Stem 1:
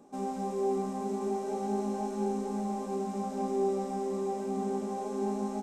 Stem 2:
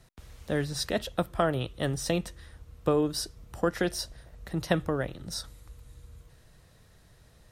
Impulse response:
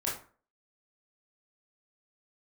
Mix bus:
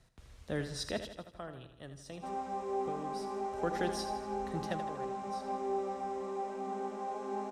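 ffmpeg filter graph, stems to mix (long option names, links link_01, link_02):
-filter_complex "[0:a]bandpass=frequency=1400:width_type=q:width=0.69:csg=0,adelay=2100,volume=1.5dB[link_01];[1:a]lowpass=10000,volume=4.5dB,afade=type=out:start_time=0.93:duration=0.25:silence=0.251189,afade=type=in:start_time=3.46:duration=0.24:silence=0.266073,afade=type=out:start_time=4.55:duration=0.3:silence=0.251189,asplit=2[link_02][link_03];[link_03]volume=-10dB,aecho=0:1:80|160|240|320|400|480|560|640:1|0.54|0.292|0.157|0.085|0.0459|0.0248|0.0134[link_04];[link_01][link_02][link_04]amix=inputs=3:normalize=0"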